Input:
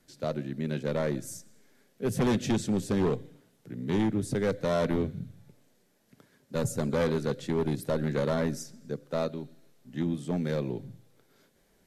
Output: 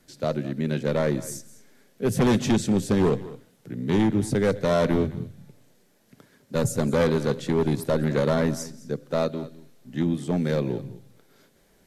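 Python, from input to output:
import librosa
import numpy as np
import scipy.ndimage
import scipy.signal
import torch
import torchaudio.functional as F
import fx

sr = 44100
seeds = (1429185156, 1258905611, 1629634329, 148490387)

y = x + 10.0 ** (-18.0 / 20.0) * np.pad(x, (int(209 * sr / 1000.0), 0))[:len(x)]
y = y * 10.0 ** (5.5 / 20.0)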